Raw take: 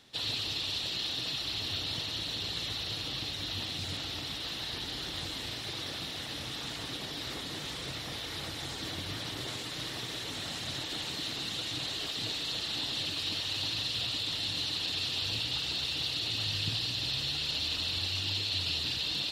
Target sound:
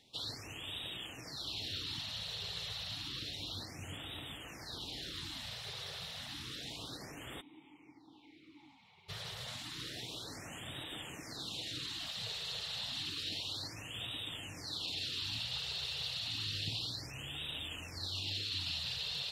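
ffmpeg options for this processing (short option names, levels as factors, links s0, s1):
-filter_complex "[0:a]asplit=3[s0][s1][s2];[s0]afade=t=out:st=7.4:d=0.02[s3];[s1]asplit=3[s4][s5][s6];[s4]bandpass=f=300:t=q:w=8,volume=1[s7];[s5]bandpass=f=870:t=q:w=8,volume=0.501[s8];[s6]bandpass=f=2240:t=q:w=8,volume=0.355[s9];[s7][s8][s9]amix=inputs=3:normalize=0,afade=t=in:st=7.4:d=0.02,afade=t=out:st=9.08:d=0.02[s10];[s2]afade=t=in:st=9.08:d=0.02[s11];[s3][s10][s11]amix=inputs=3:normalize=0,afftfilt=real='re*(1-between(b*sr/1024,250*pow(5500/250,0.5+0.5*sin(2*PI*0.3*pts/sr))/1.41,250*pow(5500/250,0.5+0.5*sin(2*PI*0.3*pts/sr))*1.41))':imag='im*(1-between(b*sr/1024,250*pow(5500/250,0.5+0.5*sin(2*PI*0.3*pts/sr))/1.41,250*pow(5500/250,0.5+0.5*sin(2*PI*0.3*pts/sr))*1.41))':win_size=1024:overlap=0.75,volume=0.501"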